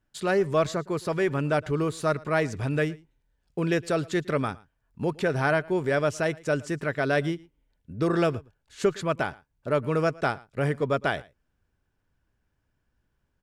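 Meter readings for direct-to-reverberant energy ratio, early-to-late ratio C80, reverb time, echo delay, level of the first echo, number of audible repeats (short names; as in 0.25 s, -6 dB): none, none, none, 0.113 s, -23.0 dB, 1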